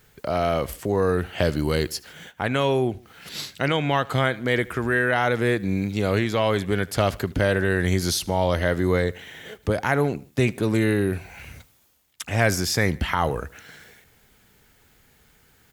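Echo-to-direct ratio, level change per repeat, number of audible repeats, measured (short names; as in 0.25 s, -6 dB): -22.0 dB, -5.5 dB, 2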